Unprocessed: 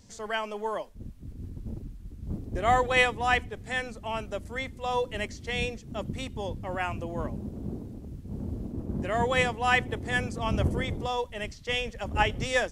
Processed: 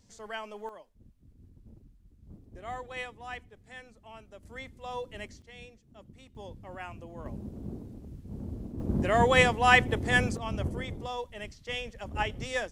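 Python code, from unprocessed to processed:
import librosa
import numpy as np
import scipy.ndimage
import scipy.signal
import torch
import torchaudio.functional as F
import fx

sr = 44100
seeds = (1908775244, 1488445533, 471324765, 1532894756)

y = fx.gain(x, sr, db=fx.steps((0.0, -7.5), (0.69, -16.0), (4.43, -9.0), (5.42, -18.5), (6.35, -10.5), (7.26, -4.0), (8.8, 3.5), (10.37, -6.0)))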